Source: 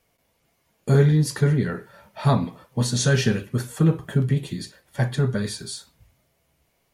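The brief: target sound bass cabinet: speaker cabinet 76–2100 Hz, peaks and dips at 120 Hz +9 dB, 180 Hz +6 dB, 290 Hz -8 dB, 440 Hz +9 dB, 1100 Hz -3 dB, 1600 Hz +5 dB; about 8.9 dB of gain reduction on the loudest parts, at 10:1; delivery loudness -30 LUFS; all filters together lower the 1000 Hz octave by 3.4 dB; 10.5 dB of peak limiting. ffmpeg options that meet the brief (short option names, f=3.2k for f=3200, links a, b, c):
-af "equalizer=f=1k:t=o:g=-4.5,acompressor=threshold=-22dB:ratio=10,alimiter=limit=-24dB:level=0:latency=1,highpass=f=76:w=0.5412,highpass=f=76:w=1.3066,equalizer=f=120:t=q:w=4:g=9,equalizer=f=180:t=q:w=4:g=6,equalizer=f=290:t=q:w=4:g=-8,equalizer=f=440:t=q:w=4:g=9,equalizer=f=1.1k:t=q:w=4:g=-3,equalizer=f=1.6k:t=q:w=4:g=5,lowpass=f=2.1k:w=0.5412,lowpass=f=2.1k:w=1.3066,volume=-1dB"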